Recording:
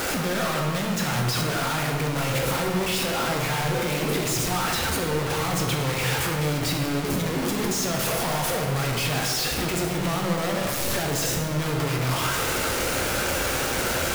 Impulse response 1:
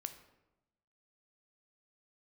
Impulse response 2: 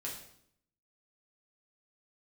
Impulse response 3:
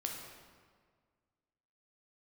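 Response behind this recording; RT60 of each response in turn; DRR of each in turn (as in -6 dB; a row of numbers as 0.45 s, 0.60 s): 3; 0.95 s, 0.70 s, 1.7 s; 8.0 dB, -4.0 dB, 0.5 dB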